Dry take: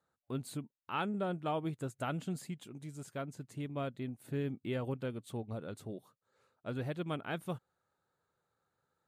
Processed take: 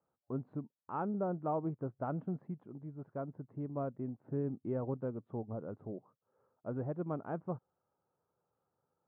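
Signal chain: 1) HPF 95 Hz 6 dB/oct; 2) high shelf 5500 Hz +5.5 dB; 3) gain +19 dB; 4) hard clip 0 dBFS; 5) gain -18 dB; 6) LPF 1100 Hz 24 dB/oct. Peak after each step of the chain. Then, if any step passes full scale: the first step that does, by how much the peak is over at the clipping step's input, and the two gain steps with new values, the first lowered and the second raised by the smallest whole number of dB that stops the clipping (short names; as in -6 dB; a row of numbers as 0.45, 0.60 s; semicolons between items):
-22.5, -22.0, -3.0, -3.0, -21.0, -24.0 dBFS; no overload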